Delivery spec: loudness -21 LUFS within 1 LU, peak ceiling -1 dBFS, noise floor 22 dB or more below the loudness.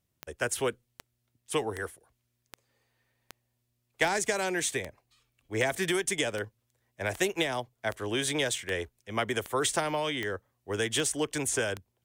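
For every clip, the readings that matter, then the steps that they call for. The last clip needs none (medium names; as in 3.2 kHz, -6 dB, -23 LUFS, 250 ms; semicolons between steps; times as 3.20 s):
clicks found 16; loudness -30.5 LUFS; peak level -14.0 dBFS; loudness target -21.0 LUFS
-> de-click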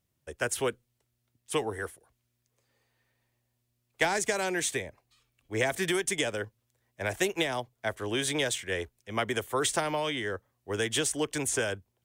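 clicks found 0; loudness -30.5 LUFS; peak level -14.0 dBFS; loudness target -21.0 LUFS
-> trim +9.5 dB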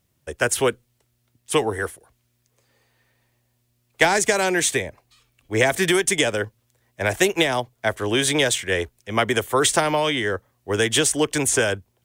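loudness -21.0 LUFS; peak level -4.5 dBFS; noise floor -69 dBFS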